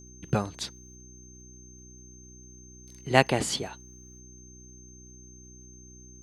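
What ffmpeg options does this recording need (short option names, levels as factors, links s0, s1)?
-af "adeclick=t=4,bandreject=f=62.2:t=h:w=4,bandreject=f=124.4:t=h:w=4,bandreject=f=186.6:t=h:w=4,bandreject=f=248.8:t=h:w=4,bandreject=f=311:t=h:w=4,bandreject=f=373.2:t=h:w=4,bandreject=f=6300:w=30"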